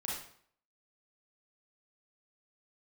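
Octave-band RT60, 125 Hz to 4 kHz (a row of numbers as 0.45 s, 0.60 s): 0.60 s, 0.60 s, 0.60 s, 0.60 s, 0.55 s, 0.50 s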